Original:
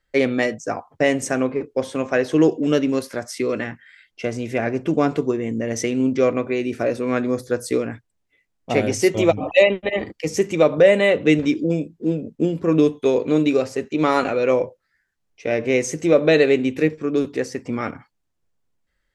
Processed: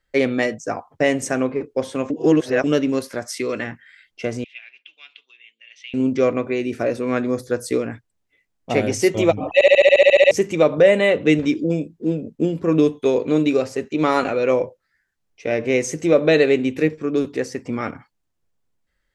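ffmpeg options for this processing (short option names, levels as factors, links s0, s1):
-filter_complex "[0:a]asettb=1/sr,asplit=3[s0][s1][s2];[s0]atrim=end=3.234[s3];[s1]atrim=start=3.23:end=3.63,asetpts=PTS-STARTPTS,afade=t=in:d=0.004:c=qsin,afade=t=out:st=0.396:d=0.004:c=qsin,tiltshelf=f=970:g=-3[s4];[s2]atrim=start=3.626[s5];[s3][s4]acrossfade=d=0.004:c1=hsin:c2=qsin[s6];[s6][s5]acrossfade=d=0.004:c1=qsin:c2=hsin,asettb=1/sr,asplit=3[s7][s8][s9];[s7]atrim=end=4.444[s10];[s8]atrim=start=4.44:end=5.94,asetpts=PTS-STARTPTS,afade=t=in:d=0.004:c=qsin,afade=t=out:st=1.496:d=0.004:c=qsin,asuperpass=centerf=3000:order=4:qfactor=2.6[s11];[s9]atrim=start=5.936[s12];[s10][s11]acrossfade=d=0.004:c1=hsin:c2=qsin[s13];[s13][s12]acrossfade=d=0.004:c1=qsin:c2=hsin,asplit=14[s14][s15][s16][s17][s18][s19][s20][s21][s22][s23][s24][s25][s26][s27];[s14]atrim=end=2.102[s28];[s15]atrim=start=2.098:end=2.642,asetpts=PTS-STARTPTS,areverse[s29];[s16]atrim=start=2.638:end=9.612[s30];[s17]atrim=start=9.538:end=9.612[s31];[s18]atrim=start=9.538:end=9.612[s32];[s19]atrim=start=9.538:end=9.612[s33];[s20]atrim=start=9.538:end=9.612[s34];[s21]atrim=start=9.538:end=9.612[s35];[s22]atrim=start=9.538:end=9.612[s36];[s23]atrim=start=9.538:end=9.612[s37];[s24]atrim=start=9.538:end=9.612[s38];[s25]atrim=start=9.538:end=9.612[s39];[s26]atrim=start=9.538:end=9.612[s40];[s27]atrim=start=10.308[s41];[s28][s29]acrossfade=d=0.004:c1=hsin:c2=hsin[s42];[s42][s30]acrossfade=d=0.004:c1=hsin:c2=hsin[s43];[s43][s31]acrossfade=d=0.004:c1=hsin:c2=hsin[s44];[s44][s32]acrossfade=d=0.004:c1=hsin:c2=hsin[s45];[s45][s33]acrossfade=d=0.004:c1=hsin:c2=hsin[s46];[s46][s34]acrossfade=d=0.004:c1=hsin:c2=hsin[s47];[s47][s35]acrossfade=d=0.004:c1=hsin:c2=hsin[s48];[s48][s36]acrossfade=d=0.004:c1=hsin:c2=hsin[s49];[s49][s37]acrossfade=d=0.004:c1=hsin:c2=hsin[s50];[s50][s38]acrossfade=d=0.004:c1=hsin:c2=hsin[s51];[s51][s39]acrossfade=d=0.004:c1=hsin:c2=hsin[s52];[s52][s40]acrossfade=d=0.004:c1=hsin:c2=hsin[s53];[s53][s41]acrossfade=d=0.004:c1=hsin:c2=hsin"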